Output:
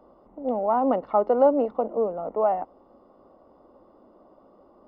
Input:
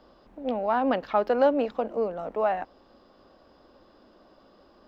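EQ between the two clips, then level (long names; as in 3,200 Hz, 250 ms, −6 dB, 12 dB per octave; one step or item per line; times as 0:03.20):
Savitzky-Golay smoothing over 65 samples
low-shelf EQ 140 Hz −8 dB
+3.5 dB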